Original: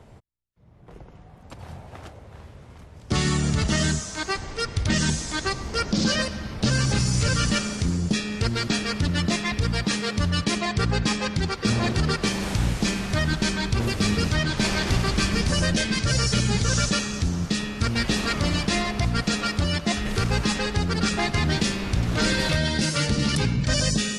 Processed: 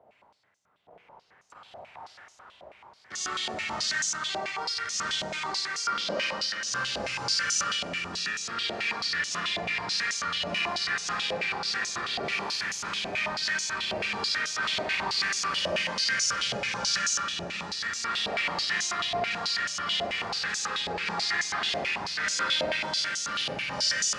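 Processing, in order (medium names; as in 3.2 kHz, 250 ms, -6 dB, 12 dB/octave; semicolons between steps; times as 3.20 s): 22.86–23.26 s: expander -19 dBFS; Schroeder reverb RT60 2.8 s, combs from 31 ms, DRR -7.5 dB; step-sequenced band-pass 9.2 Hz 670–6300 Hz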